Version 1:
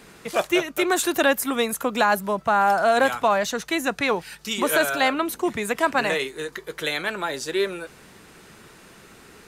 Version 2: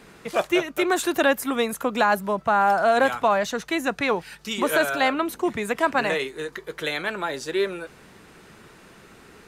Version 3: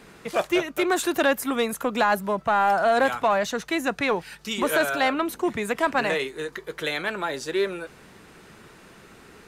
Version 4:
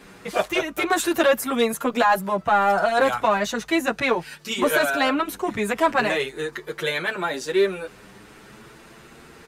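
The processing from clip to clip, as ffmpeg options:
-af "highshelf=f=4.1k:g=-6"
-af "asoftclip=type=tanh:threshold=-11.5dB"
-filter_complex "[0:a]asplit=2[a][b];[b]adelay=8,afreqshift=0.4[c];[a][c]amix=inputs=2:normalize=1,volume=5.5dB"

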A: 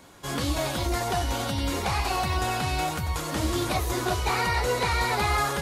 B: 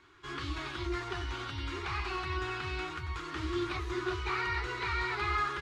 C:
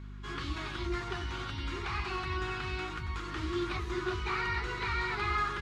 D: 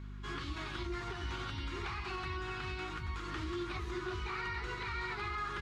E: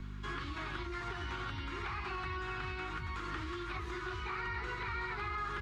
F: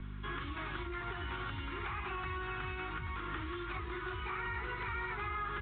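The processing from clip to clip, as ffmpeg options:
-af "firequalizer=gain_entry='entry(100,0);entry(210,-16);entry(360,7);entry(520,-17);entry(1200,6);entry(1700,4);entry(2600,3);entry(12000,-27)':delay=0.05:min_phase=1,volume=-9dB"
-af "aeval=exprs='val(0)+0.00708*(sin(2*PI*50*n/s)+sin(2*PI*2*50*n/s)/2+sin(2*PI*3*50*n/s)/3+sin(2*PI*4*50*n/s)/4+sin(2*PI*5*50*n/s)/5)':c=same"
-af "alimiter=level_in=5dB:limit=-24dB:level=0:latency=1:release=157,volume=-5dB,volume=-1dB"
-filter_complex "[0:a]acrossover=split=100|1000|2300[a][b][c][d];[a]acompressor=threshold=-49dB:ratio=4[e];[b]acompressor=threshold=-49dB:ratio=4[f];[c]acompressor=threshold=-44dB:ratio=4[g];[d]acompressor=threshold=-59dB:ratio=4[h];[e][f][g][h]amix=inputs=4:normalize=0,volume=4.5dB"
-ar 8000 -c:a pcm_mulaw

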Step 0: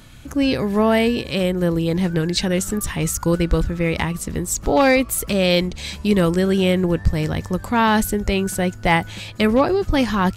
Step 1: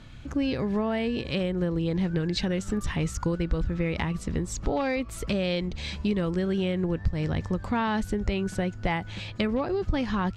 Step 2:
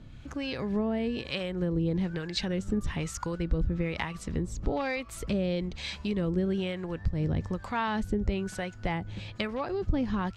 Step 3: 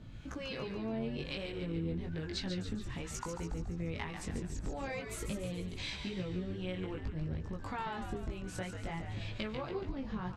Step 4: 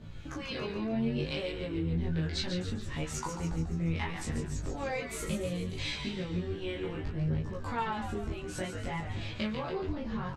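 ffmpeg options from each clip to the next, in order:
-af "lowpass=4.8k,acompressor=threshold=-20dB:ratio=6,lowshelf=f=200:g=4,volume=-4.5dB"
-filter_complex "[0:a]acrossover=split=600[a][b];[a]aeval=exprs='val(0)*(1-0.7/2+0.7/2*cos(2*PI*1.1*n/s))':c=same[c];[b]aeval=exprs='val(0)*(1-0.7/2-0.7/2*cos(2*PI*1.1*n/s))':c=same[d];[c][d]amix=inputs=2:normalize=0"
-filter_complex "[0:a]acompressor=threshold=-35dB:ratio=6,flanger=delay=18:depth=4.5:speed=0.54,asplit=2[a][b];[b]asplit=7[c][d][e][f][g][h][i];[c]adelay=142,afreqshift=-83,volume=-7dB[j];[d]adelay=284,afreqshift=-166,volume=-12dB[k];[e]adelay=426,afreqshift=-249,volume=-17.1dB[l];[f]adelay=568,afreqshift=-332,volume=-22.1dB[m];[g]adelay=710,afreqshift=-415,volume=-27.1dB[n];[h]adelay=852,afreqshift=-498,volume=-32.2dB[o];[i]adelay=994,afreqshift=-581,volume=-37.2dB[p];[j][k][l][m][n][o][p]amix=inputs=7:normalize=0[q];[a][q]amix=inputs=2:normalize=0,volume=1.5dB"
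-filter_complex "[0:a]flanger=delay=20:depth=4.5:speed=0.67,asplit=2[a][b];[b]adelay=13,volume=-3.5dB[c];[a][c]amix=inputs=2:normalize=0,volume=6dB"

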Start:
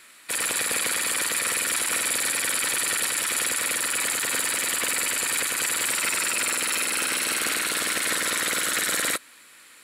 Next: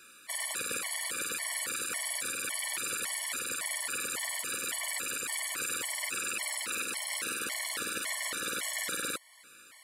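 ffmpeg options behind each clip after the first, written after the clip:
-af "alimiter=limit=-19dB:level=0:latency=1:release=349,afftfilt=real='re*gt(sin(2*PI*1.8*pts/sr)*(1-2*mod(floor(b*sr/1024/580),2)),0)':imag='im*gt(sin(2*PI*1.8*pts/sr)*(1-2*mod(floor(b*sr/1024/580),2)),0)':win_size=1024:overlap=0.75,volume=-1.5dB"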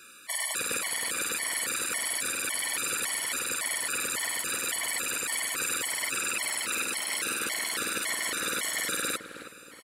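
-filter_complex "[0:a]asplit=2[a][b];[b]adelay=317,lowpass=f=1.4k:p=1,volume=-8dB,asplit=2[c][d];[d]adelay=317,lowpass=f=1.4k:p=1,volume=0.44,asplit=2[e][f];[f]adelay=317,lowpass=f=1.4k:p=1,volume=0.44,asplit=2[g][h];[h]adelay=317,lowpass=f=1.4k:p=1,volume=0.44,asplit=2[i][j];[j]adelay=317,lowpass=f=1.4k:p=1,volume=0.44[k];[a][c][e][g][i][k]amix=inputs=6:normalize=0,volume=4dB"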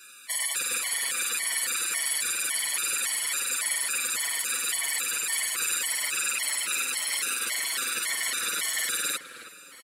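-filter_complex "[0:a]tiltshelf=f=970:g=-6.5,asplit=2[a][b];[b]adelay=6.6,afreqshift=-2.1[c];[a][c]amix=inputs=2:normalize=1"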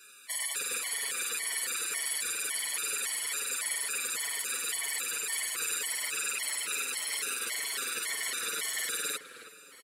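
-af "equalizer=f=430:t=o:w=0.26:g=10.5,volume=-5dB"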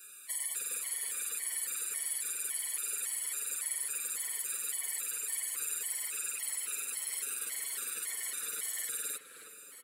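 -af "bandreject=f=121.4:t=h:w=4,bandreject=f=242.8:t=h:w=4,bandreject=f=364.2:t=h:w=4,bandreject=f=485.6:t=h:w=4,bandreject=f=607:t=h:w=4,bandreject=f=728.4:t=h:w=4,bandreject=f=849.8:t=h:w=4,bandreject=f=971.2:t=h:w=4,bandreject=f=1.0926k:t=h:w=4,bandreject=f=1.214k:t=h:w=4,bandreject=f=1.3354k:t=h:w=4,bandreject=f=1.4568k:t=h:w=4,bandreject=f=1.5782k:t=h:w=4,bandreject=f=1.6996k:t=h:w=4,bandreject=f=1.821k:t=h:w=4,bandreject=f=1.9424k:t=h:w=4,bandreject=f=2.0638k:t=h:w=4,bandreject=f=2.1852k:t=h:w=4,bandreject=f=2.3066k:t=h:w=4,bandreject=f=2.428k:t=h:w=4,bandreject=f=2.5494k:t=h:w=4,bandreject=f=2.6708k:t=h:w=4,bandreject=f=2.7922k:t=h:w=4,bandreject=f=2.9136k:t=h:w=4,bandreject=f=3.035k:t=h:w=4,bandreject=f=3.1564k:t=h:w=4,bandreject=f=3.2778k:t=h:w=4,bandreject=f=3.3992k:t=h:w=4,bandreject=f=3.5206k:t=h:w=4,bandreject=f=3.642k:t=h:w=4,bandreject=f=3.7634k:t=h:w=4,bandreject=f=3.8848k:t=h:w=4,acompressor=threshold=-49dB:ratio=1.5,aexciter=amount=2.1:drive=8.2:freq=7.5k,volume=-3.5dB"

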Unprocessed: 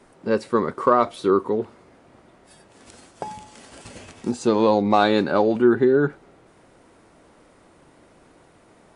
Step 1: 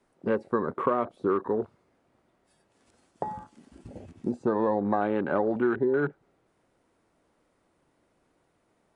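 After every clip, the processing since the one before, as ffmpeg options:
-filter_complex "[0:a]acrossover=split=620|2000[a][b][c];[a]acompressor=threshold=-26dB:ratio=4[d];[b]acompressor=threshold=-30dB:ratio=4[e];[c]acompressor=threshold=-51dB:ratio=4[f];[d][e][f]amix=inputs=3:normalize=0,afwtdn=0.0158"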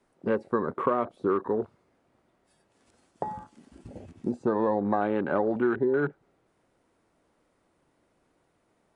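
-af anull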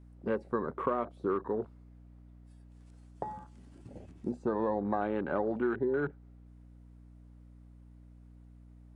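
-af "aeval=exprs='val(0)+0.00447*(sin(2*PI*60*n/s)+sin(2*PI*2*60*n/s)/2+sin(2*PI*3*60*n/s)/3+sin(2*PI*4*60*n/s)/4+sin(2*PI*5*60*n/s)/5)':c=same,volume=-5.5dB"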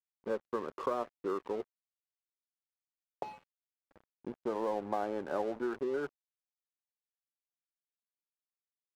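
-af "bandpass=f=660:t=q:w=0.77:csg=0,aeval=exprs='sgn(val(0))*max(abs(val(0))-0.00422,0)':c=same"

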